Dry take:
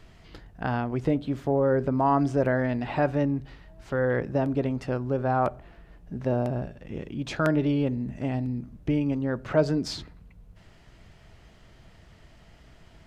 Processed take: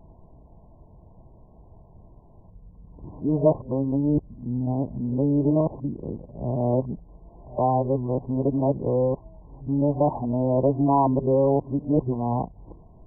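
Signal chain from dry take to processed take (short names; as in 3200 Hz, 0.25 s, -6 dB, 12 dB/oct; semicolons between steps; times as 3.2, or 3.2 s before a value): whole clip reversed; brick-wall FIR low-pass 1100 Hz; gain +3 dB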